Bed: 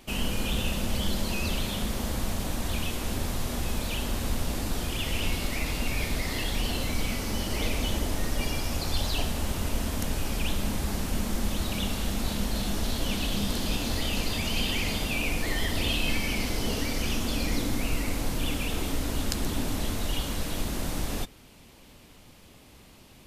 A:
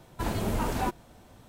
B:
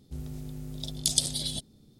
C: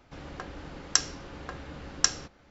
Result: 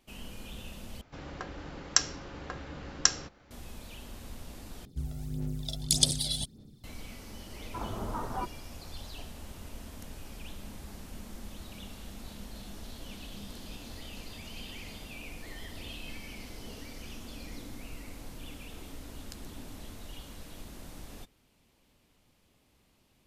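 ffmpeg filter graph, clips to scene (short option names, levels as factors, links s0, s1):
-filter_complex "[0:a]volume=0.168[s0];[2:a]aphaser=in_gain=1:out_gain=1:delay=1.5:decay=0.56:speed=1.7:type=sinusoidal[s1];[1:a]highshelf=f=1800:t=q:w=3:g=-13.5[s2];[s0]asplit=3[s3][s4][s5];[s3]atrim=end=1.014[s6];[3:a]atrim=end=2.5,asetpts=PTS-STARTPTS,volume=0.944[s7];[s4]atrim=start=3.506:end=4.854[s8];[s1]atrim=end=1.99,asetpts=PTS-STARTPTS,volume=0.841[s9];[s5]atrim=start=6.836[s10];[s2]atrim=end=1.48,asetpts=PTS-STARTPTS,volume=0.355,afade=t=in:d=0.004:c=hsin,afade=t=out:st=1.476:d=0.004:c=hsin,adelay=7550[s11];[s6][s7]acrossfade=d=0.004:c1=hsin:c2=hsin[s12];[s12][s8]acrossfade=d=0.004:c1=hsin:c2=hsin[s13];[s13][s9]acrossfade=d=0.004:c1=hsin:c2=hsin[s14];[s14][s10]acrossfade=d=0.004:c1=hsin:c2=hsin[s15];[s15][s11]amix=inputs=2:normalize=0"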